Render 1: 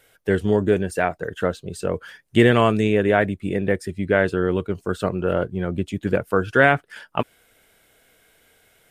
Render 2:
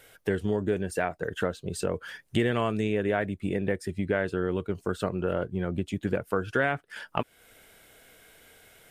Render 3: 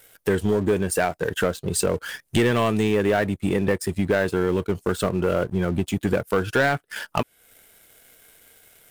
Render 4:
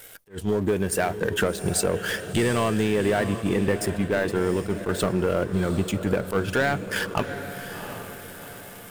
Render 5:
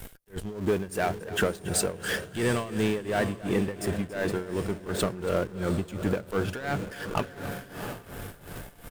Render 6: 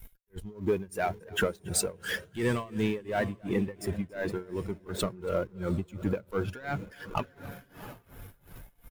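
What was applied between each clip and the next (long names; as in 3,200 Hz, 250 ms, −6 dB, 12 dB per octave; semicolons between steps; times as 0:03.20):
downward compressor 2.5 to 1, threshold −32 dBFS, peak gain reduction 14.5 dB; level +3 dB
leveller curve on the samples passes 2; high-shelf EQ 7,400 Hz +11 dB
downward compressor 3 to 1, threshold −30 dBFS, peak gain reduction 10.5 dB; feedback delay with all-pass diffusion 738 ms, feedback 46%, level −10 dB; level that may rise only so fast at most 260 dB per second; level +7 dB
in parallel at −12 dB: comparator with hysteresis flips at −32 dBFS; on the sum: amplitude tremolo 2.8 Hz, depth 84%; single-tap delay 280 ms −17 dB; level −2.5 dB
spectral dynamics exaggerated over time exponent 1.5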